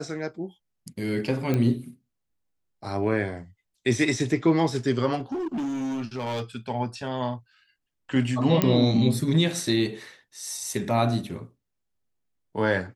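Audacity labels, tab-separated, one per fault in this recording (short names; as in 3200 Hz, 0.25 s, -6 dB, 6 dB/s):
1.540000	1.540000	pop -13 dBFS
5.190000	6.430000	clipped -26 dBFS
8.620000	8.620000	pop -7 dBFS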